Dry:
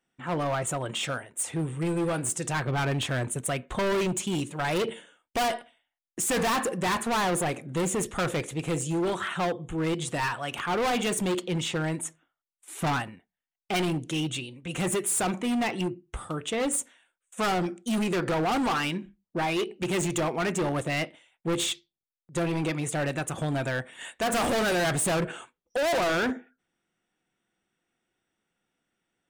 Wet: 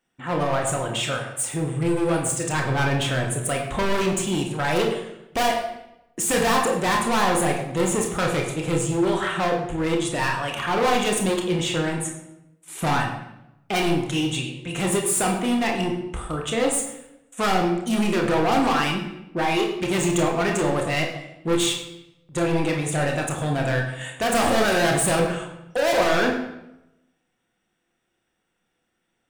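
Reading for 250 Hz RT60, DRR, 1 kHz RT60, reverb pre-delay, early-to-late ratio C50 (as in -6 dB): 1.0 s, 1.0 dB, 0.80 s, 26 ms, 5.5 dB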